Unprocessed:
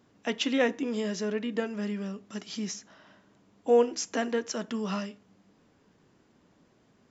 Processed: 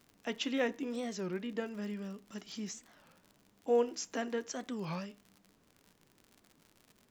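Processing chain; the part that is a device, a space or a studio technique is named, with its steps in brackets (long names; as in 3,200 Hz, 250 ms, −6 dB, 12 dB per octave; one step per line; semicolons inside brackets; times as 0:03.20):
warped LP (wow of a warped record 33 1/3 rpm, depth 250 cents; surface crackle 83 per second −39 dBFS; pink noise bed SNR 38 dB)
level −7 dB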